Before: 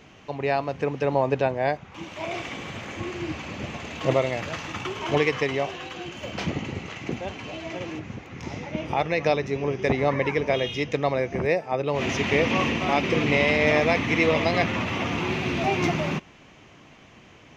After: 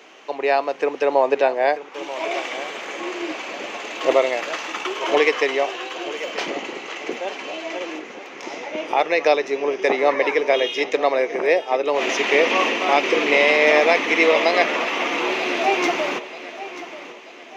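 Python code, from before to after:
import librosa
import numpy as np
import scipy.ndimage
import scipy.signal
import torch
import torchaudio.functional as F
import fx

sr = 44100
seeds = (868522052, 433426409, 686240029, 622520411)

y = scipy.signal.sosfilt(scipy.signal.butter(4, 340.0, 'highpass', fs=sr, output='sos'), x)
y = fx.echo_feedback(y, sr, ms=936, feedback_pct=42, wet_db=-14.5)
y = y * librosa.db_to_amplitude(6.0)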